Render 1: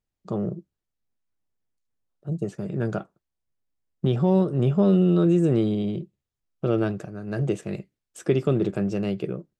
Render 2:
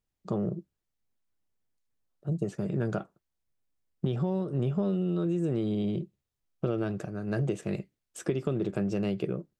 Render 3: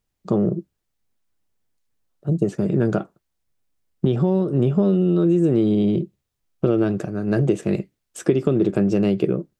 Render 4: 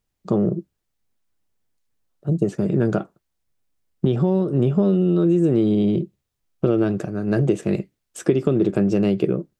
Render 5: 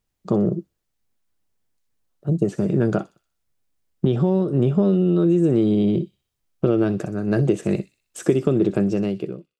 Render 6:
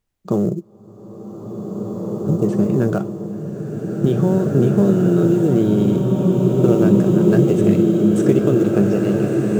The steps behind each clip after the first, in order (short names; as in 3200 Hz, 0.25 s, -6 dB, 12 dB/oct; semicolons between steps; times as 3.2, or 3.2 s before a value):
compressor 10:1, threshold -25 dBFS, peak gain reduction 11 dB
dynamic EQ 300 Hz, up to +6 dB, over -41 dBFS, Q 0.99; gain +7 dB
nothing audible
ending faded out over 0.87 s; thin delay 62 ms, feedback 49%, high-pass 4600 Hz, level -8.5 dB
in parallel at -10.5 dB: sample-rate reducer 7100 Hz, jitter 20%; on the sum: bloom reverb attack 2.33 s, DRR -2 dB; gain -1 dB